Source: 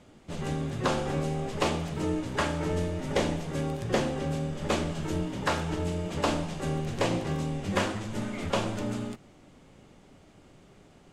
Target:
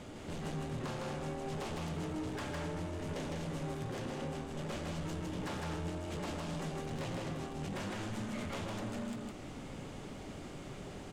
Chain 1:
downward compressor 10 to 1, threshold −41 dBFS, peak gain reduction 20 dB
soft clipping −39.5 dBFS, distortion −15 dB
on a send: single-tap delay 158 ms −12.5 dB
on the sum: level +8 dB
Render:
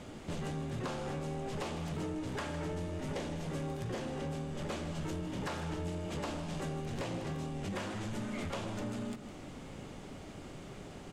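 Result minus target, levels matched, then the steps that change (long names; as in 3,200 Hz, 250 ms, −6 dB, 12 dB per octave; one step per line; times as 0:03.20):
echo-to-direct −10.5 dB; soft clipping: distortion −6 dB
change: soft clipping −46 dBFS, distortion −9 dB
change: single-tap delay 158 ms −2 dB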